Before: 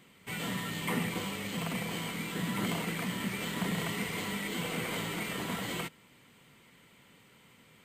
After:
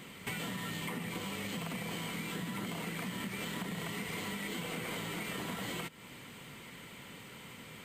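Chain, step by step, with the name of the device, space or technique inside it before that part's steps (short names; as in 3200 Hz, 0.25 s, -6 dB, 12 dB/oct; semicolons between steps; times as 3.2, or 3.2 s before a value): serial compression, leveller first (compressor 2.5:1, threshold -36 dBFS, peak gain reduction 6.5 dB; compressor 6:1, threshold -47 dBFS, peak gain reduction 13.5 dB); gain +10 dB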